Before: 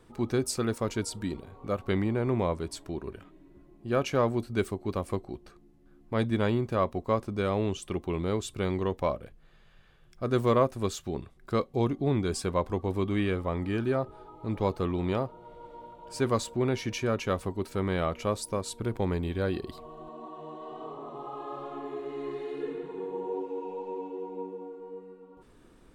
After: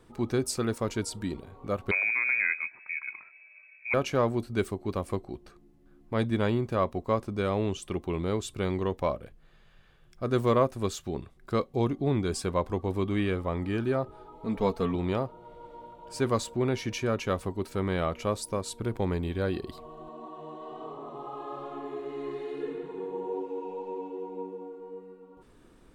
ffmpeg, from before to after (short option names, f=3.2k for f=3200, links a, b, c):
-filter_complex "[0:a]asettb=1/sr,asplit=3[a][b][c];[a]atrim=end=1.914[d];[b]atrim=start=1.91:end=3.94,asetpts=PTS-STARTPTS,afade=t=in:d=0.004:c=qsin,afade=t=out:st=2.026:d=0.004:c=qsin,lowpass=f=2.2k:t=q:w=0.5098,lowpass=f=2.2k:t=q:w=0.6013,lowpass=f=2.2k:t=q:w=0.9,lowpass=f=2.2k:t=q:w=2.563,afreqshift=-2600[e];[c]atrim=start=3.936[f];[d][e]acrossfade=d=0.004:c1=hsin:c2=qsin[g];[g][f]acrossfade=d=0.004:c1=qsin:c2=hsin,asettb=1/sr,asplit=3[h][i][j];[h]atrim=end=14.324[k];[i]atrim=start=14.32:end=14.95,asetpts=PTS-STARTPTS,afade=t=in:d=0.004:c=qsin,afade=t=out:st=0.626:d=0.004:c=qsin,aecho=1:1:4.4:0.65,atrim=end_sample=27783[l];[j]atrim=start=14.946[m];[k][l]acrossfade=d=0.004:c1=hsin:c2=qsin[n];[n][m]acrossfade=d=0.004:c1=qsin:c2=hsin"